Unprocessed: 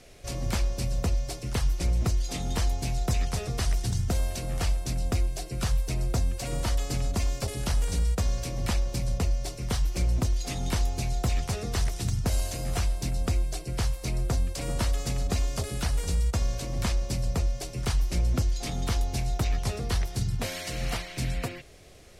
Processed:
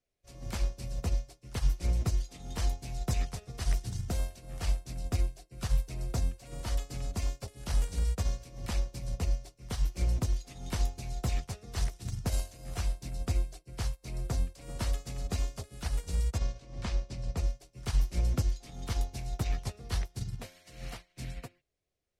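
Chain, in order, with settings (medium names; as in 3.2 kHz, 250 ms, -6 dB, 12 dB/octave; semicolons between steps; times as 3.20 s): 16.38–17.37 s: low-pass 5.8 kHz 12 dB/octave; upward expansion 2.5:1, over -44 dBFS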